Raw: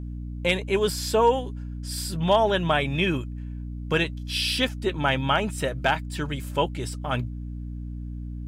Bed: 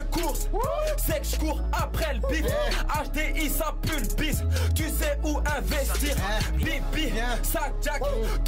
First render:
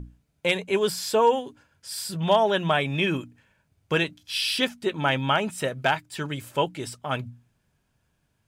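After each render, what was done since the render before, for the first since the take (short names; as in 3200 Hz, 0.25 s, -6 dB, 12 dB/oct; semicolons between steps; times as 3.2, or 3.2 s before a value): notches 60/120/180/240/300 Hz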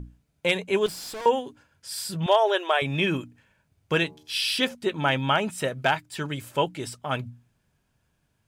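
0.86–1.26 tube stage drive 34 dB, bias 0.7; 2.26–2.82 brick-wall FIR high-pass 320 Hz; 3.98–4.75 de-hum 76.22 Hz, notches 16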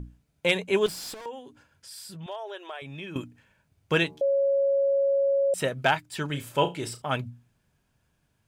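1.14–3.16 compressor 2:1, threshold -48 dBFS; 4.21–5.54 bleep 553 Hz -20 dBFS; 6.26–7.02 flutter echo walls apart 5.9 m, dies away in 0.22 s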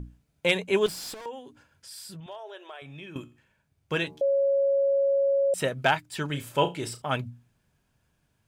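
2.2–4.07 resonator 72 Hz, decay 0.43 s, mix 50%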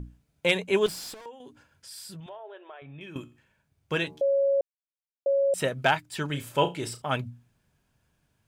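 0.95–1.4 fade out, to -9.5 dB; 2.29–3.01 air absorption 460 m; 4.61–5.26 mute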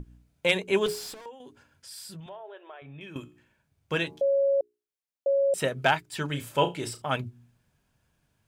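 notches 60/120/180/240/300/360/420 Hz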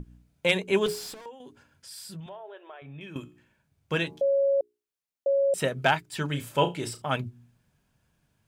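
bell 180 Hz +3 dB 0.92 oct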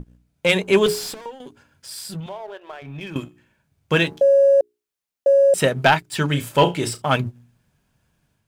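sample leveller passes 1; AGC gain up to 6 dB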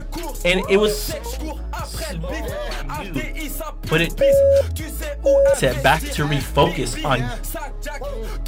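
add bed -1.5 dB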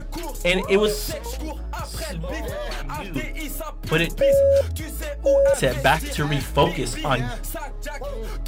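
gain -2.5 dB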